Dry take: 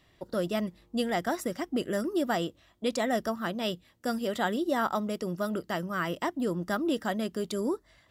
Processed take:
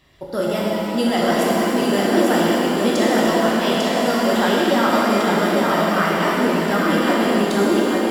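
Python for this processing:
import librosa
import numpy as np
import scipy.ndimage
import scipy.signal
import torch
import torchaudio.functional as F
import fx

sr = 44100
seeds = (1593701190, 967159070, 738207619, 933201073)

y = x + 10.0 ** (-3.0 / 20.0) * np.pad(x, (int(847 * sr / 1000.0), 0))[:len(x)]
y = fx.rev_shimmer(y, sr, seeds[0], rt60_s=3.0, semitones=7, shimmer_db=-8, drr_db=-5.0)
y = F.gain(torch.from_numpy(y), 5.0).numpy()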